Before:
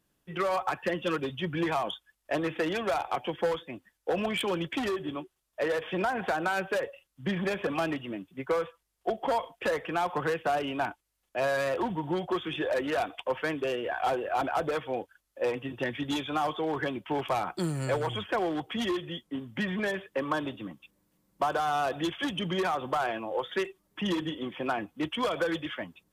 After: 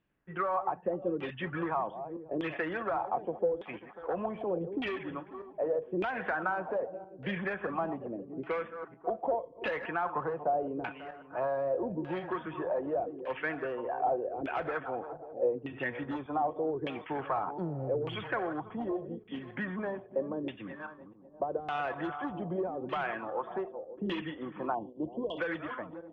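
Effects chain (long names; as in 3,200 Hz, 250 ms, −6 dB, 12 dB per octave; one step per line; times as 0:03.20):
feedback delay that plays each chunk backwards 271 ms, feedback 49%, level −11.5 dB
auto-filter low-pass saw down 0.83 Hz 370–2,800 Hz
time-frequency box erased 0:24.75–0:25.38, 1,100–2,700 Hz
in parallel at −2.5 dB: downward compressor, threshold −34 dBFS, peak gain reduction 16 dB
on the sum: one half of a high-frequency compander decoder only
level −8.5 dB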